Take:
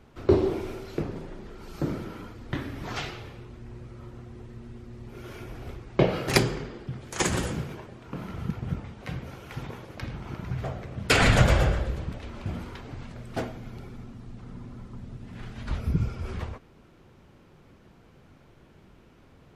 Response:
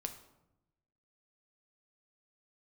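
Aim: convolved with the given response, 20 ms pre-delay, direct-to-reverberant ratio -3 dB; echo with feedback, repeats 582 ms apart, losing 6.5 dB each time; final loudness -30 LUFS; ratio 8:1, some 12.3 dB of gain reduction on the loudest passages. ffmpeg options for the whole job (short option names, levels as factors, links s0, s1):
-filter_complex "[0:a]acompressor=threshold=0.0447:ratio=8,aecho=1:1:582|1164|1746|2328|2910|3492:0.473|0.222|0.105|0.0491|0.0231|0.0109,asplit=2[s0][s1];[1:a]atrim=start_sample=2205,adelay=20[s2];[s1][s2]afir=irnorm=-1:irlink=0,volume=1.68[s3];[s0][s3]amix=inputs=2:normalize=0,volume=1.12"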